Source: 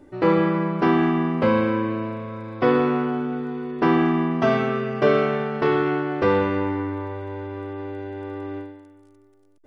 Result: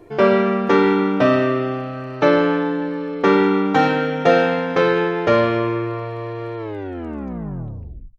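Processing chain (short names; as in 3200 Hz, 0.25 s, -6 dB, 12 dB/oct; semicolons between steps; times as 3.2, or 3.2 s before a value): tape stop at the end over 1.92 s; varispeed +18%; gain +4 dB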